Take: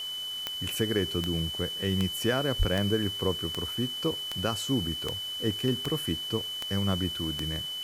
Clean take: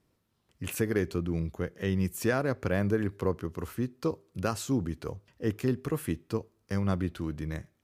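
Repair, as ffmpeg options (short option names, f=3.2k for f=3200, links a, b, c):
-filter_complex "[0:a]adeclick=t=4,bandreject=f=3k:w=30,asplit=3[a][b][c];[a]afade=t=out:st=2.58:d=0.02[d];[b]highpass=f=140:w=0.5412,highpass=f=140:w=1.3066,afade=t=in:st=2.58:d=0.02,afade=t=out:st=2.7:d=0.02[e];[c]afade=t=in:st=2.7:d=0.02[f];[d][e][f]amix=inputs=3:normalize=0,afwtdn=0.0045"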